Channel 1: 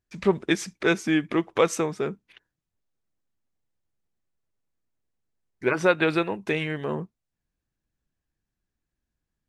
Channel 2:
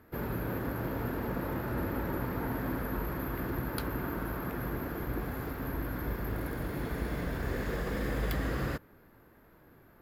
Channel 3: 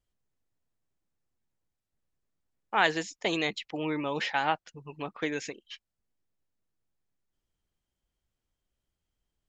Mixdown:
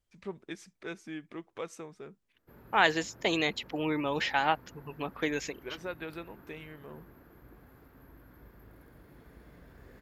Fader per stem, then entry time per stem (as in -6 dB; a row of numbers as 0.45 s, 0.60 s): -18.5 dB, -20.0 dB, +0.5 dB; 0.00 s, 2.35 s, 0.00 s